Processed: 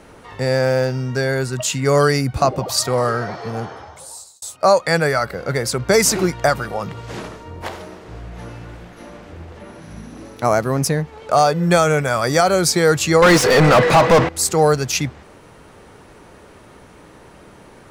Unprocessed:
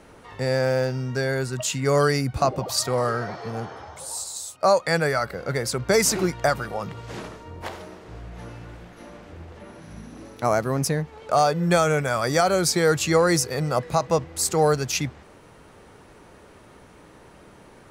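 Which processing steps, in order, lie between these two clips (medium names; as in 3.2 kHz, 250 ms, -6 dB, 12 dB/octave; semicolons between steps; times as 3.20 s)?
3.66–4.42 s: fade out; 13.22–14.29 s: overdrive pedal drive 33 dB, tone 2.1 kHz, clips at -8.5 dBFS; trim +5 dB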